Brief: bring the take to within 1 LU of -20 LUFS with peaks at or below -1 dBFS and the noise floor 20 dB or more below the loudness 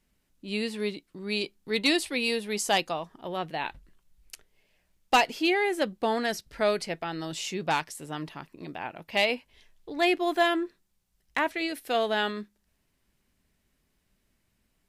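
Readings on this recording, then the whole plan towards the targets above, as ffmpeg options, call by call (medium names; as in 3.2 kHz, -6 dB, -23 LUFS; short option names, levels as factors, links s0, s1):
loudness -28.5 LUFS; peak level -12.5 dBFS; loudness target -20.0 LUFS
-> -af "volume=2.66"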